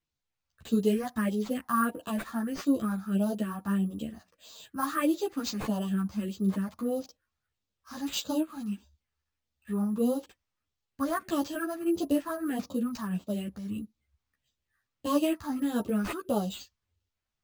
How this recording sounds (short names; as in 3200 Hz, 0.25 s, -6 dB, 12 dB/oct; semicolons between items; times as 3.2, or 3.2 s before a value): phasing stages 4, 1.6 Hz, lowest notch 430–2000 Hz; aliases and images of a low sample rate 11000 Hz, jitter 0%; a shimmering, thickened sound